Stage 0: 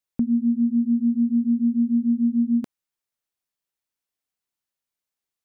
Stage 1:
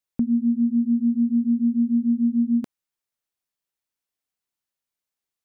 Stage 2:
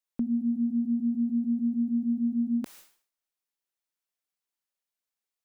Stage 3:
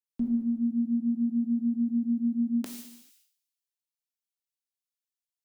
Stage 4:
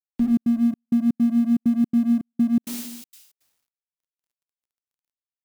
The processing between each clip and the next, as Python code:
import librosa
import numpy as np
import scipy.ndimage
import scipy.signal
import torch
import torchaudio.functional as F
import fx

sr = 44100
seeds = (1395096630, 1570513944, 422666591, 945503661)

y1 = x
y2 = fx.peak_eq(y1, sr, hz=89.0, db=-13.5, octaves=1.7)
y2 = fx.sustainer(y2, sr, db_per_s=120.0)
y2 = y2 * librosa.db_to_amplitude(-3.0)
y3 = fx.rev_gated(y2, sr, seeds[0], gate_ms=470, shape='falling', drr_db=4.0)
y3 = fx.band_widen(y3, sr, depth_pct=70)
y4 = fx.law_mismatch(y3, sr, coded='mu')
y4 = fx.step_gate(y4, sr, bpm=163, pattern='x.xx.xxx..xx.xxx', floor_db=-60.0, edge_ms=4.5)
y4 = y4 * librosa.db_to_amplitude(7.0)